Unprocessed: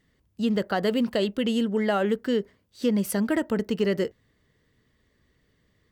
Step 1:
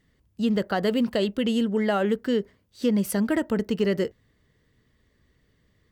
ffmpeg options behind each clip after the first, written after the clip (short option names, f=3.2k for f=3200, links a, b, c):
-af "lowshelf=f=140:g=4"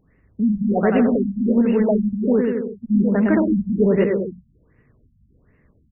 -af "aecho=1:1:110|198|268.4|324.7|369.8:0.631|0.398|0.251|0.158|0.1,aeval=exprs='0.335*(cos(1*acos(clip(val(0)/0.335,-1,1)))-cos(1*PI/2))+0.0188*(cos(5*acos(clip(val(0)/0.335,-1,1)))-cos(5*PI/2))':c=same,afftfilt=real='re*lt(b*sr/1024,210*pow(2900/210,0.5+0.5*sin(2*PI*1.3*pts/sr)))':imag='im*lt(b*sr/1024,210*pow(2900/210,0.5+0.5*sin(2*PI*1.3*pts/sr)))':win_size=1024:overlap=0.75,volume=4.5dB"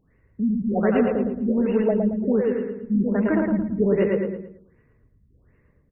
-af "aecho=1:1:112|224|336|448:0.596|0.208|0.073|0.0255,volume=-4dB"